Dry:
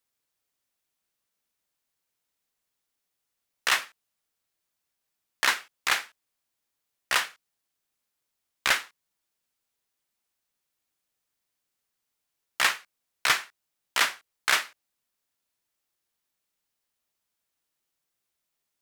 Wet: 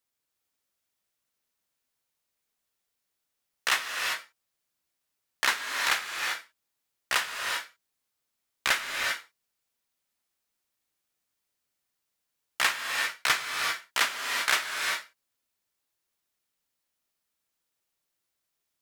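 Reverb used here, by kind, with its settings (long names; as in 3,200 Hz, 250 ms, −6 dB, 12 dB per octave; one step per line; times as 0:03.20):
reverb whose tail is shaped and stops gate 420 ms rising, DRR 2 dB
level −2 dB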